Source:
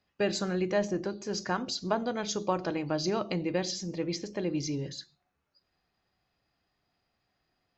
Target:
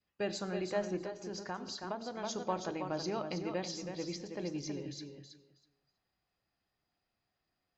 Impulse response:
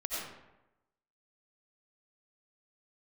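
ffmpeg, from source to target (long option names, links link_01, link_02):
-filter_complex "[0:a]bandreject=frequency=138:width_type=h:width=4,bandreject=frequency=276:width_type=h:width=4,asplit=2[link_01][link_02];[link_02]aecho=0:1:323|646|969:0.447|0.067|0.0101[link_03];[link_01][link_03]amix=inputs=2:normalize=0,adynamicequalizer=threshold=0.00708:dfrequency=840:dqfactor=1.8:tfrequency=840:tqfactor=1.8:attack=5:release=100:ratio=0.375:range=2:mode=boostabove:tftype=bell,asplit=2[link_04][link_05];[1:a]atrim=start_sample=2205[link_06];[link_05][link_06]afir=irnorm=-1:irlink=0,volume=-20dB[link_07];[link_04][link_07]amix=inputs=2:normalize=0,asettb=1/sr,asplit=3[link_08][link_09][link_10];[link_08]atrim=end=1.044[link_11];[link_09]atrim=start=1.04:end=2.22,asetpts=PTS-STARTPTS,afade=type=in:duration=0.004:curve=qsin,afade=type=out:start_time=1.176:duration=0.004:curve=qsin,acompressor=threshold=-31dB:ratio=2[link_12];[link_10]atrim=start=2.216[link_13];[link_11][link_12]acrossfade=duration=0.004:curve1=hsin:curve2=qsin[link_14];[link_14][link_13]acrossfade=duration=0.004:curve1=qsin:curve2=hsin,volume=-8.5dB"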